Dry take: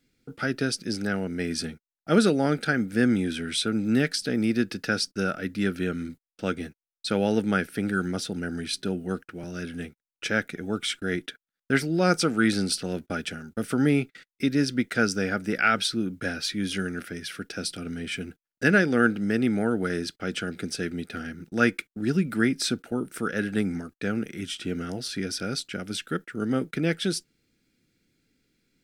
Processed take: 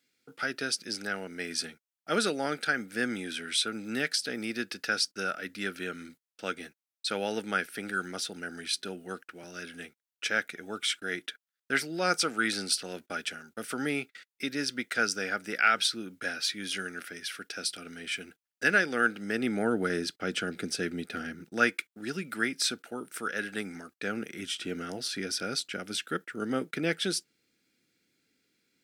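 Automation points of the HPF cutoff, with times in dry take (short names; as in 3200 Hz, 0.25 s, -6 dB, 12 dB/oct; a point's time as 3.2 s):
HPF 6 dB/oct
19.13 s 970 Hz
19.75 s 250 Hz
21.34 s 250 Hz
21.76 s 960 Hz
23.74 s 960 Hz
24.28 s 440 Hz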